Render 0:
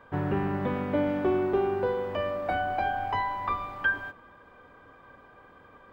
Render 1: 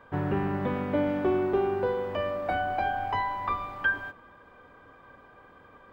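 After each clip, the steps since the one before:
no processing that can be heard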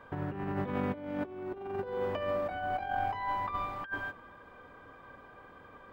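compressor whose output falls as the input rises −31 dBFS, ratio −0.5
level −3 dB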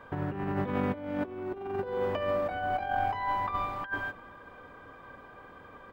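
slap from a distant wall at 93 metres, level −23 dB
level +3 dB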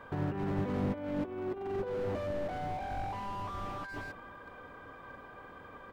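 slew-rate limiting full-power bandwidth 11 Hz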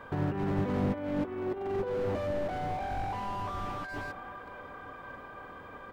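delay with a band-pass on its return 576 ms, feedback 60%, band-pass 1,100 Hz, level −12 dB
level +3 dB

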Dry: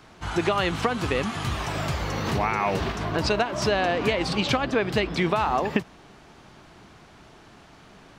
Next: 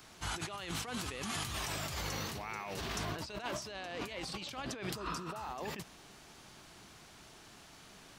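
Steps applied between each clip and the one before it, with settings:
first-order pre-emphasis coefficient 0.8
healed spectral selection 0:04.98–0:05.44, 940–4,600 Hz after
compressor whose output falls as the input rises −42 dBFS, ratio −1
level +1 dB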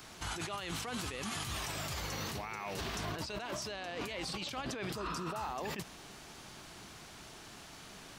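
brickwall limiter −34 dBFS, peak gain reduction 11 dB
level +4.5 dB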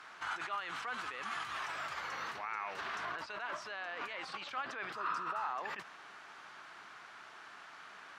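resonant band-pass 1,400 Hz, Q 1.9
level +6.5 dB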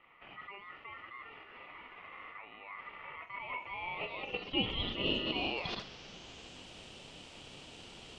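low-pass filter sweep 430 Hz → 7,000 Hz, 0:03.03–0:06.69
ring modulation 1,600 Hz
flutter between parallel walls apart 7.4 metres, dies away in 0.23 s
level +3.5 dB

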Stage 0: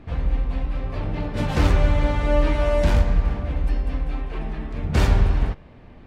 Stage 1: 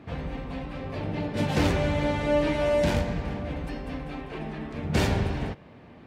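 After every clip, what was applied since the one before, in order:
high-pass filter 120 Hz 12 dB per octave
dynamic equaliser 1,200 Hz, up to −6 dB, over −46 dBFS, Q 2.3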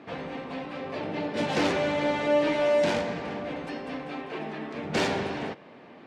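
band-pass filter 270–7,200 Hz
in parallel at −7 dB: soft clipping −30.5 dBFS, distortion −7 dB

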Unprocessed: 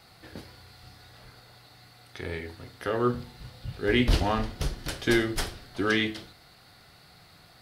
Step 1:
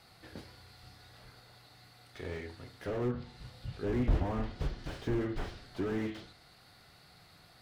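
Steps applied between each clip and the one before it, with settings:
treble cut that deepens with the level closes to 2,000 Hz, closed at −21 dBFS
slew-rate limiting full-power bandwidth 20 Hz
level −4.5 dB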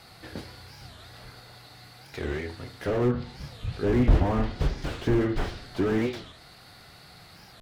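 wow of a warped record 45 rpm, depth 250 cents
level +9 dB

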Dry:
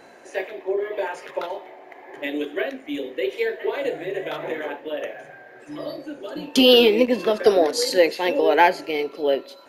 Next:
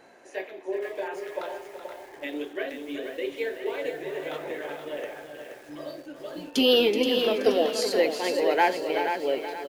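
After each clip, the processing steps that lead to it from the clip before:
on a send: single-tap delay 377 ms −9.5 dB
on the sum: feedback echo at a low word length 476 ms, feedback 35%, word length 7 bits, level −7 dB
level −6.5 dB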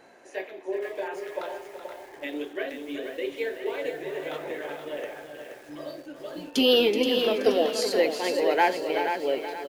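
no processing that can be heard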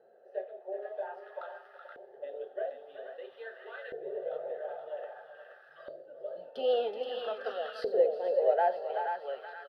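phaser with its sweep stopped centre 1,500 Hz, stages 8
auto-filter band-pass saw up 0.51 Hz 400–1,500 Hz
level +1.5 dB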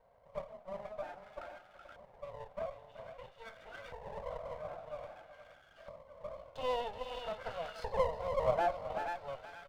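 lower of the sound and its delayed copy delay 1.4 ms
level −4 dB

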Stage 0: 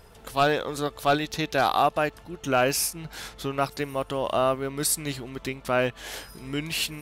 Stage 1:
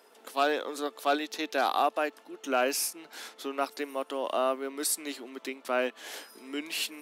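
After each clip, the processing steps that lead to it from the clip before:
Butterworth high-pass 240 Hz 48 dB per octave
level −4.5 dB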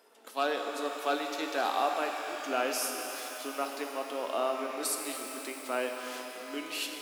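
reverb with rising layers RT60 3.9 s, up +12 semitones, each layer −8 dB, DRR 3 dB
level −4 dB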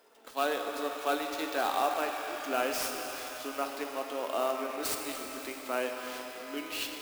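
converter with an unsteady clock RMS 0.022 ms

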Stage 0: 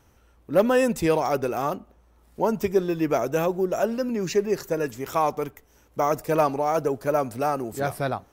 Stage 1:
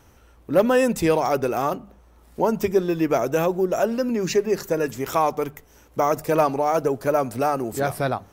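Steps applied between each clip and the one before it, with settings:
in parallel at 0 dB: downward compressor, threshold −30 dBFS, peak gain reduction 15.5 dB
on the sum: mains-hum notches 50/100/150/200 Hz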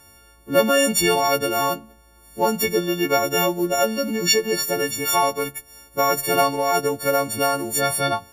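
every partial snapped to a pitch grid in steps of 4 semitones
dynamic equaliser 3,300 Hz, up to +5 dB, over −37 dBFS, Q 0.72
level −1 dB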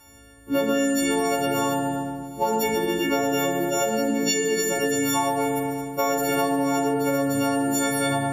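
feedback delay network reverb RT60 1.8 s, low-frequency decay 1.4×, high-frequency decay 0.7×, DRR −2.5 dB
downward compressor, threshold −16 dBFS, peak gain reduction 10.5 dB
level −3.5 dB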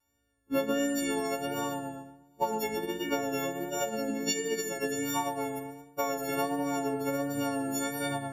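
pitch vibrato 1.4 Hz 33 cents
expander for the loud parts 2.5 to 1, over −34 dBFS
level −4 dB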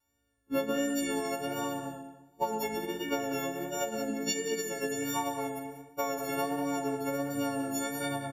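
single-tap delay 188 ms −12 dB
level −1.5 dB

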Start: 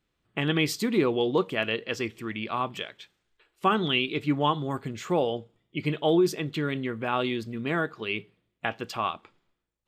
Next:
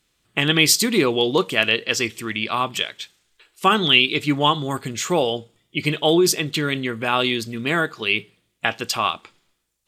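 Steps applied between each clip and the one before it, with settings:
parametric band 9,200 Hz +15 dB 2.8 octaves
level +4.5 dB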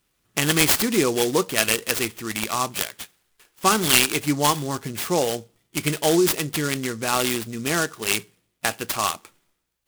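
short delay modulated by noise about 6,000 Hz, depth 0.062 ms
level −2 dB

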